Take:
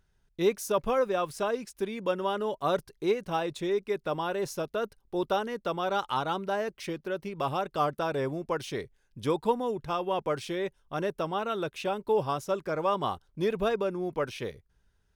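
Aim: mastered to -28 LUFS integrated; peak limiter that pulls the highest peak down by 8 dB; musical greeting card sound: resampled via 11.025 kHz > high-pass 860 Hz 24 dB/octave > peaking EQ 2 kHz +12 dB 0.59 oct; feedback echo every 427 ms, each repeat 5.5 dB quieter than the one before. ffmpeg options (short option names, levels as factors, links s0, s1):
-af "alimiter=limit=0.0794:level=0:latency=1,aecho=1:1:427|854|1281|1708|2135|2562|2989:0.531|0.281|0.149|0.079|0.0419|0.0222|0.0118,aresample=11025,aresample=44100,highpass=f=860:w=0.5412,highpass=f=860:w=1.3066,equalizer=f=2000:t=o:w=0.59:g=12,volume=2.24"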